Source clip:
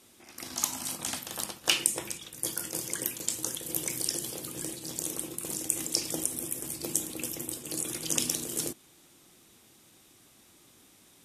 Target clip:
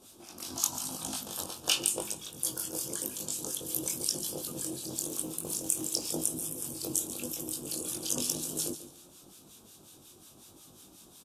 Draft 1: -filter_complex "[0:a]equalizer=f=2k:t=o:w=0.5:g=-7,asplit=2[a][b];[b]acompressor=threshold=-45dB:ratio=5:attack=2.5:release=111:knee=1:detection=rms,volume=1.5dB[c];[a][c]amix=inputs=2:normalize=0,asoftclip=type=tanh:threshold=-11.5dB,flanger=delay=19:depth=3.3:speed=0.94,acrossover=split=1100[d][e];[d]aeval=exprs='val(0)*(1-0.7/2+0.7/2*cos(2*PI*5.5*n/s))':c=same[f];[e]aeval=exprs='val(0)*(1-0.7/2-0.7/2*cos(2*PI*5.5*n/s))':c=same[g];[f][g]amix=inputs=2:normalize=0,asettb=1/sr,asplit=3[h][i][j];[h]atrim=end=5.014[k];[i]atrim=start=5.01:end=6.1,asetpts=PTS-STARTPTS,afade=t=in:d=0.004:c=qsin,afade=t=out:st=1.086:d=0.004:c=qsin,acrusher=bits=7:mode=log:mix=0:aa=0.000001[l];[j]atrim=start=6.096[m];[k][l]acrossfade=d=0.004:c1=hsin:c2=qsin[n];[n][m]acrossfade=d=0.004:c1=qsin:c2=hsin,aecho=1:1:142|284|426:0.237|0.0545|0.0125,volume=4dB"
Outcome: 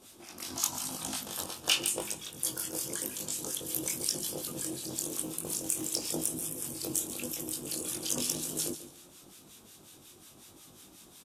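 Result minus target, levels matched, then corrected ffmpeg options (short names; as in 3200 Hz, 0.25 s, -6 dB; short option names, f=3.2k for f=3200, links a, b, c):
soft clip: distortion +16 dB; 2000 Hz band +4.0 dB
-filter_complex "[0:a]equalizer=f=2k:t=o:w=0.5:g=-17.5,asplit=2[a][b];[b]acompressor=threshold=-45dB:ratio=5:attack=2.5:release=111:knee=1:detection=rms,volume=1.5dB[c];[a][c]amix=inputs=2:normalize=0,asoftclip=type=tanh:threshold=0dB,flanger=delay=19:depth=3.3:speed=0.94,acrossover=split=1100[d][e];[d]aeval=exprs='val(0)*(1-0.7/2+0.7/2*cos(2*PI*5.5*n/s))':c=same[f];[e]aeval=exprs='val(0)*(1-0.7/2-0.7/2*cos(2*PI*5.5*n/s))':c=same[g];[f][g]amix=inputs=2:normalize=0,asettb=1/sr,asplit=3[h][i][j];[h]atrim=end=5.014[k];[i]atrim=start=5.01:end=6.1,asetpts=PTS-STARTPTS,afade=t=in:d=0.004:c=qsin,afade=t=out:st=1.086:d=0.004:c=qsin,acrusher=bits=7:mode=log:mix=0:aa=0.000001[l];[j]atrim=start=6.096[m];[k][l]acrossfade=d=0.004:c1=hsin:c2=qsin[n];[n][m]acrossfade=d=0.004:c1=qsin:c2=hsin,aecho=1:1:142|284|426:0.237|0.0545|0.0125,volume=4dB"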